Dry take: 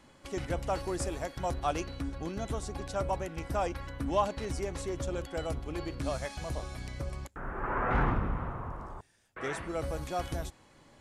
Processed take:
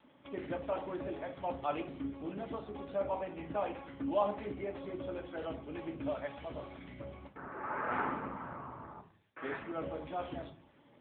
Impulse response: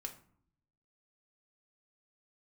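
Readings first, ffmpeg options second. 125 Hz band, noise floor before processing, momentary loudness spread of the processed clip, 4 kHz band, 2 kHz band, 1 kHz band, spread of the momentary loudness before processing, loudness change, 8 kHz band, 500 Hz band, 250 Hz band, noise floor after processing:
-13.0 dB, -60 dBFS, 12 LU, -9.5 dB, -4.5 dB, -4.0 dB, 10 LU, -4.5 dB, under -35 dB, -2.5 dB, -3.0 dB, -64 dBFS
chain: -filter_complex "[0:a]equalizer=f=78:w=6.4:g=-6.5,acrossover=split=250|3000[a][b][c];[a]acompressor=threshold=-39dB:ratio=8[d];[d][b][c]amix=inputs=3:normalize=0[e];[1:a]atrim=start_sample=2205,afade=t=out:st=0.34:d=0.01,atrim=end_sample=15435[f];[e][f]afir=irnorm=-1:irlink=0" -ar 8000 -c:a libopencore_amrnb -b:a 7950

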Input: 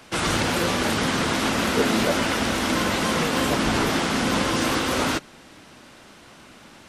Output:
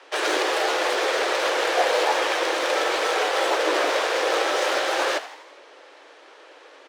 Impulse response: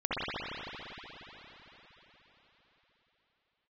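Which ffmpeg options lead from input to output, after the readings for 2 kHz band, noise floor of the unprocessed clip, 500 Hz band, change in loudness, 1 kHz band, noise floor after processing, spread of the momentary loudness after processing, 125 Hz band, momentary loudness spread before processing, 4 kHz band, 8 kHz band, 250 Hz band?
+1.5 dB, -48 dBFS, +3.5 dB, 0.0 dB, +2.0 dB, -49 dBFS, 2 LU, under -30 dB, 2 LU, 0.0 dB, -3.5 dB, -11.5 dB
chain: -filter_complex "[0:a]afreqshift=270,adynamicsmooth=sensitivity=3:basefreq=5k,asplit=6[a][b][c][d][e][f];[b]adelay=82,afreqshift=120,volume=-14dB[g];[c]adelay=164,afreqshift=240,volume=-19.5dB[h];[d]adelay=246,afreqshift=360,volume=-25dB[i];[e]adelay=328,afreqshift=480,volume=-30.5dB[j];[f]adelay=410,afreqshift=600,volume=-36.1dB[k];[a][g][h][i][j][k]amix=inputs=6:normalize=0"

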